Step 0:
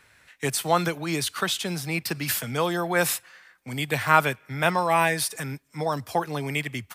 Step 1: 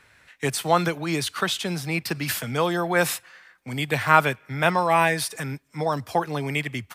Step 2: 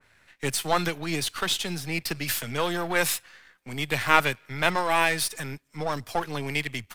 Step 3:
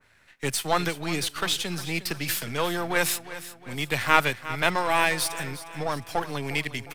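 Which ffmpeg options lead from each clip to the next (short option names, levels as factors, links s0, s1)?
-af "highshelf=f=6400:g=-6,volume=1.26"
-af "aeval=exprs='if(lt(val(0),0),0.447*val(0),val(0))':c=same,adynamicequalizer=threshold=0.0178:dfrequency=1900:dqfactor=0.7:tfrequency=1900:tqfactor=0.7:attack=5:release=100:ratio=0.375:range=3:mode=boostabove:tftype=highshelf,volume=0.794"
-af "aecho=1:1:357|714|1071|1428:0.188|0.0848|0.0381|0.0172"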